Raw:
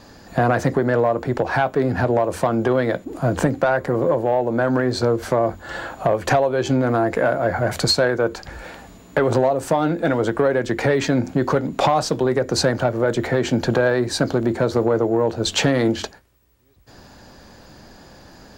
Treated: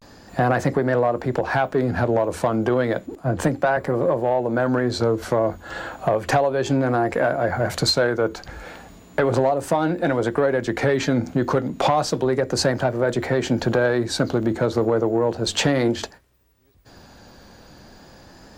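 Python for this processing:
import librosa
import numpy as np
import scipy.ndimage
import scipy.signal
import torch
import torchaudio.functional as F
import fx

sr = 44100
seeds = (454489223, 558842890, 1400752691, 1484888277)

y = fx.vibrato(x, sr, rate_hz=0.33, depth_cents=59.0)
y = fx.band_widen(y, sr, depth_pct=70, at=(3.15, 3.77))
y = y * 10.0 ** (-1.5 / 20.0)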